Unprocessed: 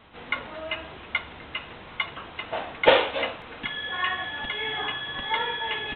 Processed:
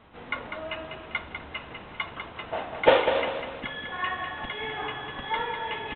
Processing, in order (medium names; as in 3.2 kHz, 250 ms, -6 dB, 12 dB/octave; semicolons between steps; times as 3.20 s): treble shelf 2.4 kHz -9.5 dB; on a send: feedback delay 198 ms, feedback 39%, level -7 dB